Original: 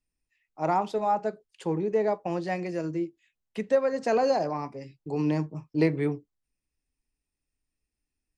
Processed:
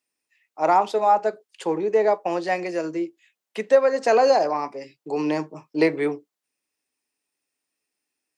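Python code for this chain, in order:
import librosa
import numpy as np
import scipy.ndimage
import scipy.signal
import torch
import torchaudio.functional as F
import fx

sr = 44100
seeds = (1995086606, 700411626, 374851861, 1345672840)

y = scipy.signal.sosfilt(scipy.signal.butter(2, 390.0, 'highpass', fs=sr, output='sos'), x)
y = y * 10.0 ** (8.0 / 20.0)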